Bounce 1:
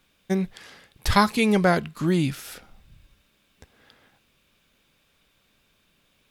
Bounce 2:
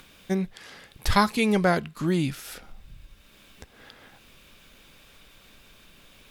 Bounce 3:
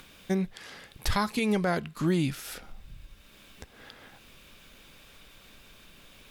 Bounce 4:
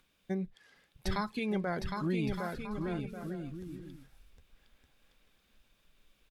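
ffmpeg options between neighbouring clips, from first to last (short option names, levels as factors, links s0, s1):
-filter_complex "[0:a]asubboost=boost=2:cutoff=57,asplit=2[s0][s1];[s1]acompressor=mode=upward:threshold=0.0447:ratio=2.5,volume=0.708[s2];[s0][s2]amix=inputs=2:normalize=0,volume=0.473"
-af "alimiter=limit=0.15:level=0:latency=1:release=216"
-af "aecho=1:1:760|1216|1490|1654|1752:0.631|0.398|0.251|0.158|0.1,afftdn=nr=13:nf=-37,volume=0.447"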